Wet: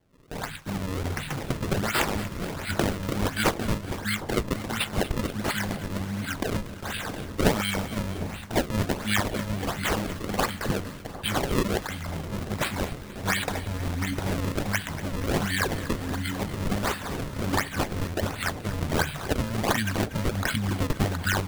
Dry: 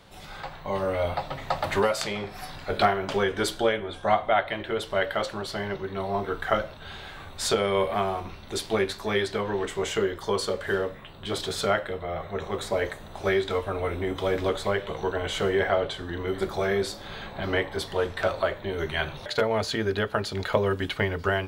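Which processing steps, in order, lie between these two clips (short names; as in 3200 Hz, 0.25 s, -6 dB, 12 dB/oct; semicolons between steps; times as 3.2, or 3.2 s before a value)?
Chebyshev band-stop 270–1500 Hz, order 4; gate with hold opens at -34 dBFS; HPF 42 Hz; high shelf 3600 Hz +10.5 dB; in parallel at +2 dB: compressor, threshold -35 dBFS, peak gain reduction 16 dB; on the sum: decimation with a swept rate 33×, swing 160% 1.4 Hz; on a send: split-band echo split 1100 Hz, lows 0.758 s, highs 0.237 s, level -14.5 dB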